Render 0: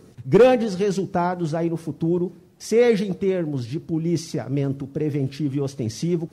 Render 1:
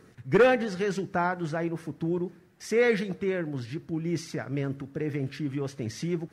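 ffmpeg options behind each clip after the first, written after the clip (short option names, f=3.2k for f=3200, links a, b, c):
-af "equalizer=f=1.7k:w=1.2:g=12,volume=-7.5dB"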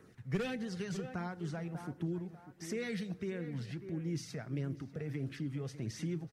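-filter_complex "[0:a]asplit=2[a][b];[b]adelay=593,lowpass=f=2.1k:p=1,volume=-14dB,asplit=2[c][d];[d]adelay=593,lowpass=f=2.1k:p=1,volume=0.26,asplit=2[e][f];[f]adelay=593,lowpass=f=2.1k:p=1,volume=0.26[g];[a][c][e][g]amix=inputs=4:normalize=0,flanger=delay=0.1:depth=1.5:regen=-48:speed=1.5:shape=sinusoidal,acrossover=split=240|3000[h][i][j];[i]acompressor=threshold=-43dB:ratio=3[k];[h][k][j]amix=inputs=3:normalize=0,volume=-2dB"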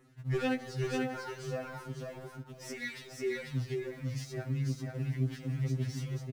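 -filter_complex "[0:a]asplit=2[a][b];[b]aeval=exprs='val(0)*gte(abs(val(0)),0.00562)':c=same,volume=-5dB[c];[a][c]amix=inputs=2:normalize=0,aecho=1:1:492:0.708,afftfilt=real='re*2.45*eq(mod(b,6),0)':imag='im*2.45*eq(mod(b,6),0)':win_size=2048:overlap=0.75"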